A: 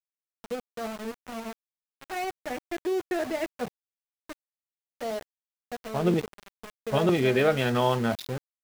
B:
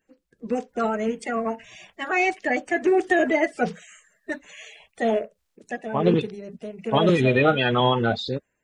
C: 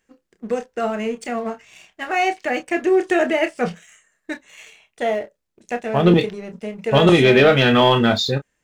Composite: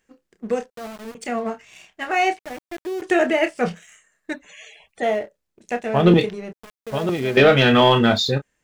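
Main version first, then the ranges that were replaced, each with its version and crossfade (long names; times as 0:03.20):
C
0:00.70–0:01.15: punch in from A
0:02.39–0:03.02: punch in from A
0:04.33–0:05.03: punch in from B
0:06.53–0:07.37: punch in from A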